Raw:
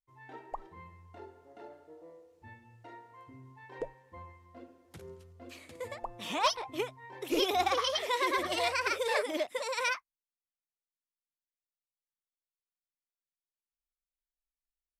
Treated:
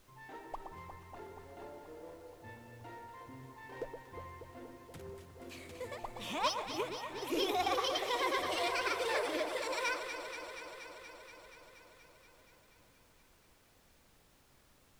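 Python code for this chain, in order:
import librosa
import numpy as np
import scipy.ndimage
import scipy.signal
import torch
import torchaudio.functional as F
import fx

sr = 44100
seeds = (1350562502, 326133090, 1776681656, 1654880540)

p1 = fx.law_mismatch(x, sr, coded='mu')
p2 = fx.vibrato(p1, sr, rate_hz=1.2, depth_cents=8.0)
p3 = p2 + fx.echo_alternate(p2, sr, ms=119, hz=1400.0, feedback_pct=87, wet_db=-7, dry=0)
p4 = fx.dmg_noise_colour(p3, sr, seeds[0], colour='pink', level_db=-60.0)
y = p4 * 10.0 ** (-6.0 / 20.0)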